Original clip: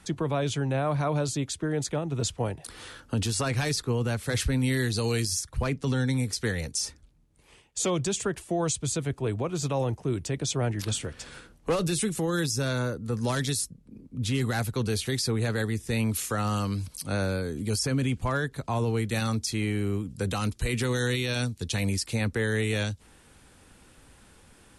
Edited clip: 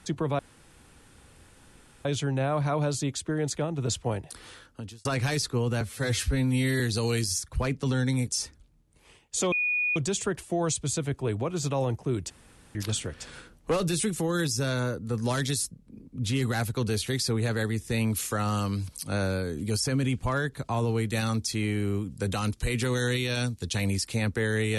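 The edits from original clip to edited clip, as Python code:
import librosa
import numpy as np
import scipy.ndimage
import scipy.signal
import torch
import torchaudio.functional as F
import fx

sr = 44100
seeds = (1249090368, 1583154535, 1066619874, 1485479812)

y = fx.edit(x, sr, fx.insert_room_tone(at_s=0.39, length_s=1.66),
    fx.fade_out_span(start_s=2.56, length_s=0.83),
    fx.stretch_span(start_s=4.15, length_s=0.66, factor=1.5),
    fx.cut(start_s=6.28, length_s=0.42),
    fx.insert_tone(at_s=7.95, length_s=0.44, hz=2460.0, db=-23.5),
    fx.room_tone_fill(start_s=10.29, length_s=0.45), tone=tone)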